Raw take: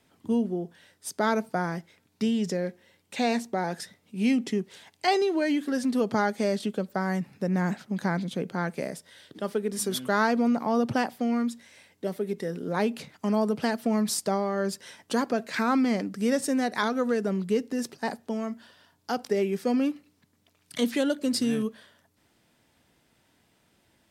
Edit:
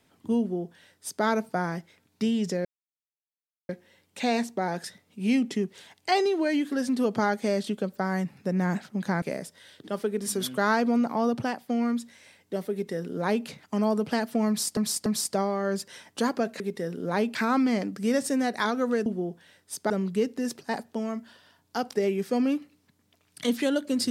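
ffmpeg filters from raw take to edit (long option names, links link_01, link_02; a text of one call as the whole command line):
ffmpeg -i in.wav -filter_complex "[0:a]asplit=10[link_01][link_02][link_03][link_04][link_05][link_06][link_07][link_08][link_09][link_10];[link_01]atrim=end=2.65,asetpts=PTS-STARTPTS,afade=type=out:start_time=2.646:duration=0.004:curve=hsin,apad=pad_dur=1.04[link_11];[link_02]atrim=start=2.65:end=8.182,asetpts=PTS-STARTPTS,afade=type=in:duration=0.004:curve=hsin[link_12];[link_03]atrim=start=8.728:end=11.2,asetpts=PTS-STARTPTS,afade=type=out:start_time=1.972:duration=0.5:silence=0.421697[link_13];[link_04]atrim=start=11.2:end=14.282,asetpts=PTS-STARTPTS,afade=type=in:duration=0.004:curve=hsin:silence=0.421697[link_14];[link_05]atrim=start=13.988:end=14.282[link_15];[link_06]atrim=start=13.988:end=15.532[link_16];[link_07]atrim=start=12.228:end=12.982[link_17];[link_08]atrim=start=15.528:end=17.242[link_18];[link_09]atrim=start=0.398:end=1.242[link_19];[link_10]atrim=start=17.238[link_20];[link_11][link_12]concat=n=2:v=0:a=1[link_21];[link_13][link_14]concat=n=2:v=0:a=1[link_22];[link_21][link_22]acrossfade=duration=0.004:curve1=hsin:curve2=hsin[link_23];[link_23][link_15]acrossfade=duration=0.004:curve1=hsin:curve2=hsin[link_24];[link_24][link_16]acrossfade=duration=0.004:curve1=hsin:curve2=hsin[link_25];[link_25][link_17]acrossfade=duration=0.004:curve1=hsin:curve2=hsin[link_26];[link_26][link_18]acrossfade=duration=0.004:curve1=hsin:curve2=hsin[link_27];[link_27][link_19]acrossfade=duration=0.004:curve1=hsin:curve2=hsin[link_28];[link_28][link_20]acrossfade=duration=0.004:curve1=hsin:curve2=hsin" out.wav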